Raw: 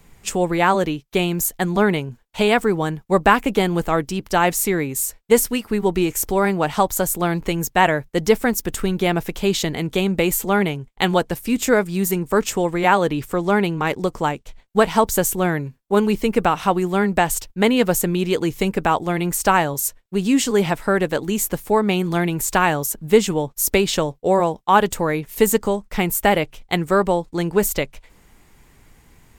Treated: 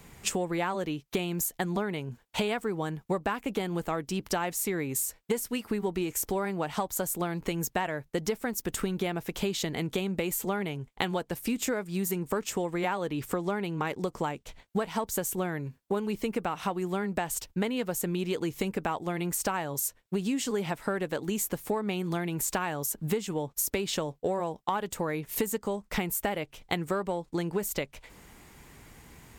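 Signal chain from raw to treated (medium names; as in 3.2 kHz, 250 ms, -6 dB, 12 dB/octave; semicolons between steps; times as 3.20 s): in parallel at -12 dB: one-sided clip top -14.5 dBFS; on the sum: high-pass 65 Hz 6 dB/octave; compression 10:1, threshold -27 dBFS, peak gain reduction 20.5 dB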